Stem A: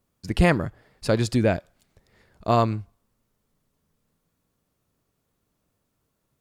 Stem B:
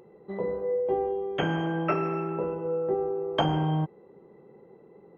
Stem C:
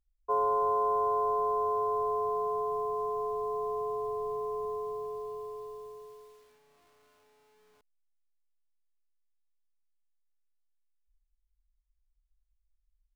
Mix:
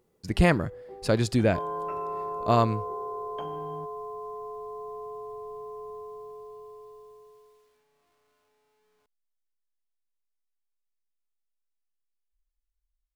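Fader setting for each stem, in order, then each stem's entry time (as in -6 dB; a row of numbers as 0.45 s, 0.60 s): -2.0 dB, -18.0 dB, -5.5 dB; 0.00 s, 0.00 s, 1.25 s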